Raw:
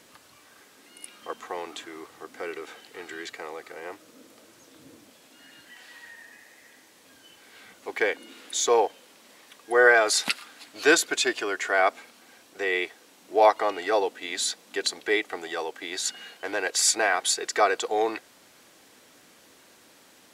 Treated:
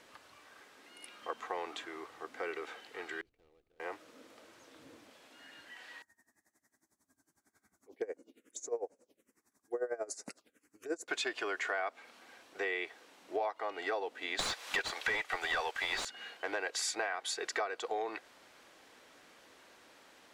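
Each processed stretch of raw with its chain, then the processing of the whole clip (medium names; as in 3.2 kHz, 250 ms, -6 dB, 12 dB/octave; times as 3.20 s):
3.21–3.80 s: median filter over 25 samples + amplifier tone stack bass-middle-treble 10-0-1
6.02–11.08 s: high-order bell 1.9 kHz -14 dB 2.9 oct + touch-sensitive phaser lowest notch 450 Hz, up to 3.3 kHz, full sweep at -29.5 dBFS + logarithmic tremolo 11 Hz, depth 21 dB
14.39–16.05 s: tilt EQ +5 dB/octave + overdrive pedal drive 32 dB, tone 1.4 kHz, clips at 0 dBFS + upward expansion, over -28 dBFS
whole clip: low-pass 2.4 kHz 6 dB/octave; peaking EQ 160 Hz -9 dB 2.6 oct; compression 10:1, threshold -32 dBFS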